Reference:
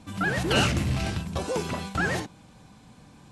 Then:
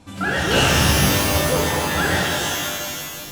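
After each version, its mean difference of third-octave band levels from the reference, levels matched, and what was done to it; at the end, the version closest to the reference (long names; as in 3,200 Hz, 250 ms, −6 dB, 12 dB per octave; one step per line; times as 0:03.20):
11.0 dB: parametric band 190 Hz −5.5 dB 0.39 octaves
reverb with rising layers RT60 2.1 s, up +12 semitones, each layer −2 dB, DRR −3 dB
level +2 dB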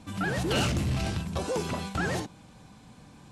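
2.0 dB: dynamic equaliser 1,900 Hz, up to −5 dB, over −39 dBFS, Q 1.3
soft clipping −20.5 dBFS, distortion −15 dB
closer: second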